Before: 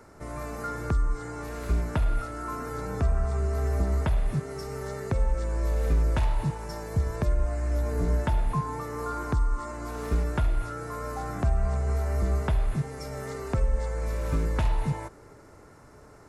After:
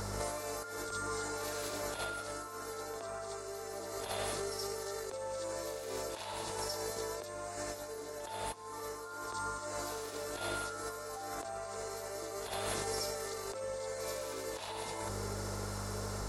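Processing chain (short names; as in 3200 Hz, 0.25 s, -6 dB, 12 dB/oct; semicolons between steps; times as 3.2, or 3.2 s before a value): HPF 370 Hz 24 dB/oct; hum 50 Hz, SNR 13 dB; negative-ratio compressor -45 dBFS, ratio -1; resonant high shelf 2900 Hz +7 dB, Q 1.5; reverse echo 70 ms -6 dB; gain +3.5 dB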